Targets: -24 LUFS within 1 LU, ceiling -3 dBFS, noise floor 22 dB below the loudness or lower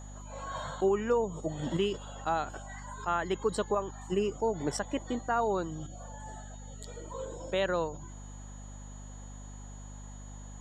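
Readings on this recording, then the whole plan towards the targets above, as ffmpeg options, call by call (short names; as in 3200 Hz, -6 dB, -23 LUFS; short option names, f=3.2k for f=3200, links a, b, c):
hum 50 Hz; harmonics up to 250 Hz; hum level -43 dBFS; steady tone 6800 Hz; tone level -54 dBFS; loudness -33.0 LUFS; peak -17.5 dBFS; loudness target -24.0 LUFS
-> -af "bandreject=f=50:t=h:w=6,bandreject=f=100:t=h:w=6,bandreject=f=150:t=h:w=6,bandreject=f=200:t=h:w=6,bandreject=f=250:t=h:w=6"
-af "bandreject=f=6.8k:w=30"
-af "volume=9dB"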